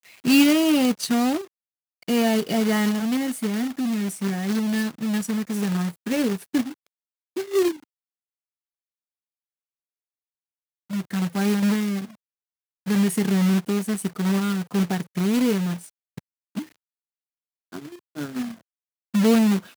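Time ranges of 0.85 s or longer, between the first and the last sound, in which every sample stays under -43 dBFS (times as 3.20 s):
7.84–10.90 s
16.68–17.72 s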